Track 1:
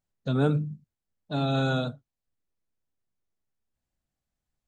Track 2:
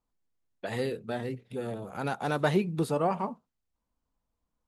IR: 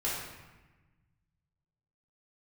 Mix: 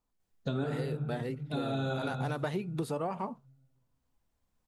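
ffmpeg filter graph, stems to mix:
-filter_complex "[0:a]adelay=200,volume=-0.5dB,asplit=2[a][b];[b]volume=-7.5dB[c];[1:a]volume=0.5dB,asplit=2[d][e];[e]apad=whole_len=215135[f];[a][f]sidechaincompress=threshold=-43dB:ratio=8:attack=16:release=995[g];[2:a]atrim=start_sample=2205[h];[c][h]afir=irnorm=-1:irlink=0[i];[g][d][i]amix=inputs=3:normalize=0,acompressor=threshold=-30dB:ratio=6"

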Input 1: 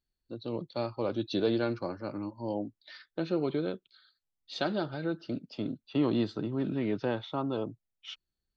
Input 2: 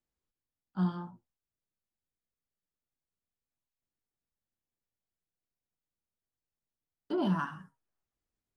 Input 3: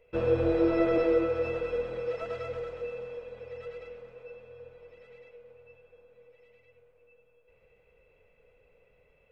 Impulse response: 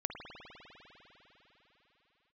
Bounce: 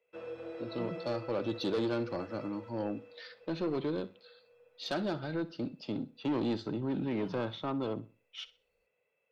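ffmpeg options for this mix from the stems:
-filter_complex "[0:a]asoftclip=type=tanh:threshold=-26.5dB,bandreject=f=50:t=h:w=6,bandreject=f=100:t=h:w=6,adelay=300,volume=0dB,asplit=2[a][b];[b]volume=-17.5dB[c];[1:a]volume=-17.5dB[d];[2:a]highpass=170,lowshelf=f=450:g=-8.5,acrossover=split=240|3000[e][f][g];[f]acompressor=threshold=-28dB:ratio=6[h];[e][h][g]amix=inputs=3:normalize=0,volume=-11dB[i];[c]aecho=0:1:63|126|189|252:1|0.29|0.0841|0.0244[j];[a][d][i][j]amix=inputs=4:normalize=0"

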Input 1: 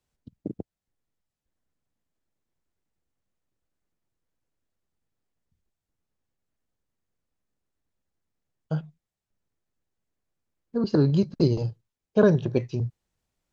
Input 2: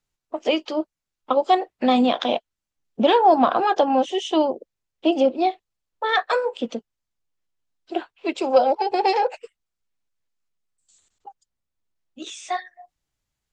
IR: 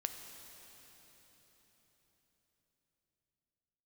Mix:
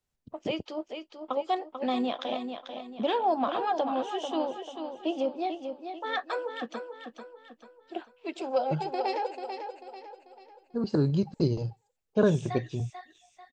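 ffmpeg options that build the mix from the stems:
-filter_complex "[0:a]volume=-4.5dB[a];[1:a]volume=-11dB,asplit=2[b][c];[c]volume=-7.5dB,aecho=0:1:441|882|1323|1764|2205|2646:1|0.41|0.168|0.0689|0.0283|0.0116[d];[a][b][d]amix=inputs=3:normalize=0"

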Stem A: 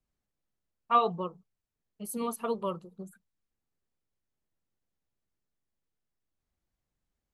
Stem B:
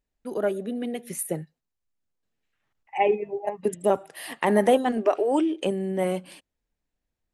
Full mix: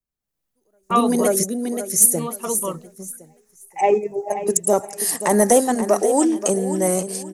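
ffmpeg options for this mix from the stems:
-filter_complex "[0:a]highshelf=f=8.8k:g=10.5,volume=-7.5dB,asplit=2[a][b];[1:a]highshelf=f=4.4k:t=q:w=3:g=13.5,asoftclip=type=tanh:threshold=-6dB,adelay=300,volume=-2dB,asplit=2[c][d];[d]volume=-5dB[e];[b]apad=whole_len=336775[f];[c][f]sidechaingate=range=-48dB:threshold=-58dB:ratio=16:detection=peak[g];[e]aecho=0:1:531|1062|1593|2124:1|0.27|0.0729|0.0197[h];[a][g][h]amix=inputs=3:normalize=0,dynaudnorm=f=190:g=3:m=12.5dB"

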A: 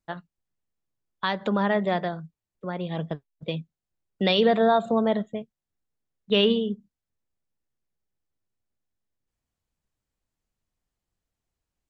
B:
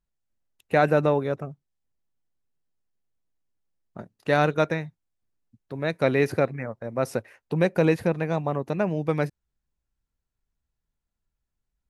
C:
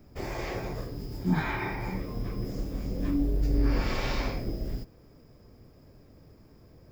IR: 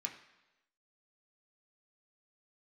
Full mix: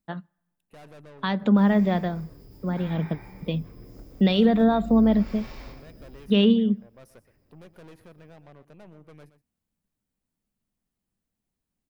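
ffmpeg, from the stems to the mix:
-filter_complex "[0:a]equalizer=f=210:w=1.4:g=12,alimiter=limit=-7dB:level=0:latency=1:release=351,volume=-3dB,asplit=2[a][b];[b]volume=-21.5dB[c];[1:a]aeval=exprs='(tanh(22.4*val(0)+0.65)-tanh(0.65))/22.4':c=same,volume=-18dB,asplit=3[d][e][f];[e]volume=-14.5dB[g];[2:a]adelay=1400,volume=-13dB,asplit=2[h][i];[i]volume=-5.5dB[j];[f]apad=whole_len=366585[k];[h][k]sidechaincompress=threshold=-50dB:ratio=8:attack=16:release=291[l];[3:a]atrim=start_sample=2205[m];[c][m]afir=irnorm=-1:irlink=0[n];[g][j]amix=inputs=2:normalize=0,aecho=0:1:122:1[o];[a][d][l][n][o]amix=inputs=5:normalize=0,aexciter=amount=1.3:drive=7.7:freq=9.3k"

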